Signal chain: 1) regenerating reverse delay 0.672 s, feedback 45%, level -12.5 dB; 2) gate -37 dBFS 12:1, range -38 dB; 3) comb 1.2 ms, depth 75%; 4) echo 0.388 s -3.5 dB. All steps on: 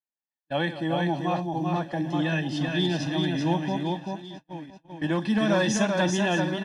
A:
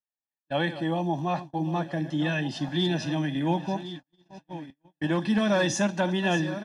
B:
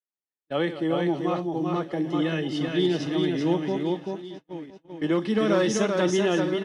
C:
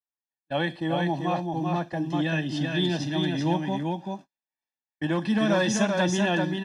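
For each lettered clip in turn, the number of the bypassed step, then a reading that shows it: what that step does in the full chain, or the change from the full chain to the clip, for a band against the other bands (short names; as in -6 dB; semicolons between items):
4, loudness change -1.0 LU; 3, 500 Hz band +6.0 dB; 1, momentary loudness spread change -6 LU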